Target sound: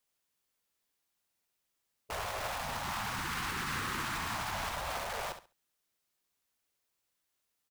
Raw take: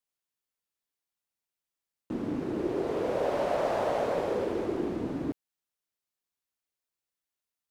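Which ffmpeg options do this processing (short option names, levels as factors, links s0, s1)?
-filter_complex "[0:a]asplit=2[s0][s1];[s1]acrusher=bits=5:mix=0:aa=0.000001,volume=0.501[s2];[s0][s2]amix=inputs=2:normalize=0,acontrast=80,alimiter=limit=0.15:level=0:latency=1:release=120,afftfilt=real='re*lt(hypot(re,im),0.0891)':imag='im*lt(hypot(re,im),0.0891)':win_size=1024:overlap=0.75,aecho=1:1:68|136|204:0.316|0.0632|0.0126"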